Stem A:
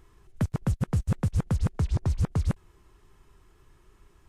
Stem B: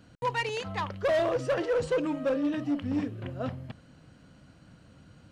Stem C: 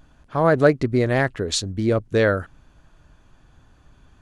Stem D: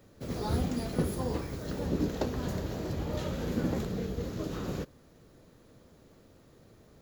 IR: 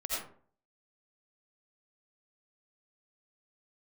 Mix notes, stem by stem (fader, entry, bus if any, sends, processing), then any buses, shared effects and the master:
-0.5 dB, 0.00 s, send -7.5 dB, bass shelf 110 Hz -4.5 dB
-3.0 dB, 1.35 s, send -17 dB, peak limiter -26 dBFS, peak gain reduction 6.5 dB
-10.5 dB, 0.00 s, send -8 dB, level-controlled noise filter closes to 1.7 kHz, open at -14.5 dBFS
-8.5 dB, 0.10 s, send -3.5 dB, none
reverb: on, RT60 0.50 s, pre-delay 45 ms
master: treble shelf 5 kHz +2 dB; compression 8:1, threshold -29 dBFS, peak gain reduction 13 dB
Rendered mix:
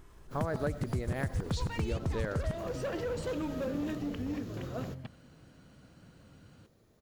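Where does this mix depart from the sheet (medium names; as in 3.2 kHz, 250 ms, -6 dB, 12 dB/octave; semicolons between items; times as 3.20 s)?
stem A: missing bass shelf 110 Hz -4.5 dB; stem D: send off; reverb return -9.5 dB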